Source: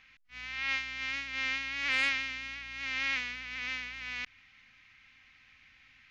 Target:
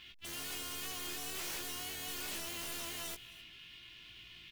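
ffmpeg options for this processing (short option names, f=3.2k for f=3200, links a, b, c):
-filter_complex "[0:a]lowpass=3.1k,asoftclip=type=tanh:threshold=-28.5dB,acrusher=bits=4:mode=log:mix=0:aa=0.000001,aeval=exprs='(mod(119*val(0)+1,2)-1)/119':c=same,asplit=2[a][b];[b]adelay=24,volume=-5dB[c];[a][c]amix=inputs=2:normalize=0,asplit=2[d][e];[e]aecho=0:1:355:0.0944[f];[d][f]amix=inputs=2:normalize=0,asetrate=59535,aresample=44100,volume=6dB"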